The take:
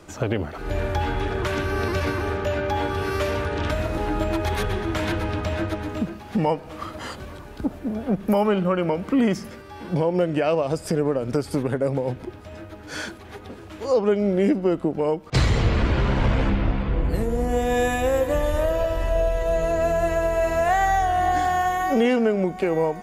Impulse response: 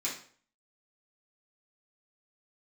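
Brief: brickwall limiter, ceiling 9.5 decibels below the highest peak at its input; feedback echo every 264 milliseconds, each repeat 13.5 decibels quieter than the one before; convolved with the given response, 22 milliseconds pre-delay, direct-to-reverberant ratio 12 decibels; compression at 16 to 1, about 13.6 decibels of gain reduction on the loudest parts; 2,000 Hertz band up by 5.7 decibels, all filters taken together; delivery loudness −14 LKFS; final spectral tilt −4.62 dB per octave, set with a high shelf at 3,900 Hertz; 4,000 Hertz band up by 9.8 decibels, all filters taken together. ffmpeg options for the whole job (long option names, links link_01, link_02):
-filter_complex "[0:a]equalizer=frequency=2000:width_type=o:gain=4,highshelf=frequency=3900:gain=6.5,equalizer=frequency=4000:width_type=o:gain=7.5,acompressor=threshold=-28dB:ratio=16,alimiter=level_in=0.5dB:limit=-24dB:level=0:latency=1,volume=-0.5dB,aecho=1:1:264|528:0.211|0.0444,asplit=2[link_01][link_02];[1:a]atrim=start_sample=2205,adelay=22[link_03];[link_02][link_03]afir=irnorm=-1:irlink=0,volume=-16.5dB[link_04];[link_01][link_04]amix=inputs=2:normalize=0,volume=20dB"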